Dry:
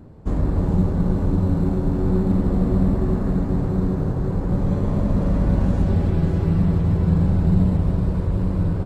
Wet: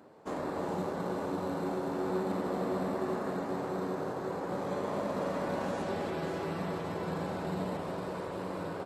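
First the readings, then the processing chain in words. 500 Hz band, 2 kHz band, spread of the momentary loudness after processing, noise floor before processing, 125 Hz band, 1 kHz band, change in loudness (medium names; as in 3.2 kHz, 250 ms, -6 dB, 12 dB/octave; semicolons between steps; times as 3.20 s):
-4.5 dB, 0.0 dB, 4 LU, -24 dBFS, -23.0 dB, -0.5 dB, -14.0 dB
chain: high-pass 520 Hz 12 dB/octave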